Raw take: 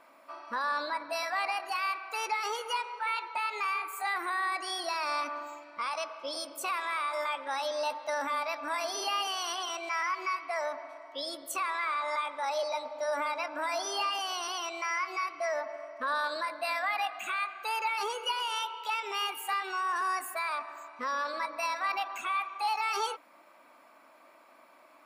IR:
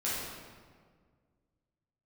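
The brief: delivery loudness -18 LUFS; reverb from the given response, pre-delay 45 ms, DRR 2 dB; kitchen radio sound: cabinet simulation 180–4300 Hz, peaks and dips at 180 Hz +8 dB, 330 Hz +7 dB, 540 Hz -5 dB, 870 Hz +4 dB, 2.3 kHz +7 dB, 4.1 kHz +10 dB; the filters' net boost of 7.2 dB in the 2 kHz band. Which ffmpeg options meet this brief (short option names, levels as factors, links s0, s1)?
-filter_complex "[0:a]equalizer=f=2000:t=o:g=3.5,asplit=2[s0][s1];[1:a]atrim=start_sample=2205,adelay=45[s2];[s1][s2]afir=irnorm=-1:irlink=0,volume=0.376[s3];[s0][s3]amix=inputs=2:normalize=0,highpass=180,equalizer=f=180:t=q:w=4:g=8,equalizer=f=330:t=q:w=4:g=7,equalizer=f=540:t=q:w=4:g=-5,equalizer=f=870:t=q:w=4:g=4,equalizer=f=2300:t=q:w=4:g=7,equalizer=f=4100:t=q:w=4:g=10,lowpass=f=4300:w=0.5412,lowpass=f=4300:w=1.3066,volume=2.51"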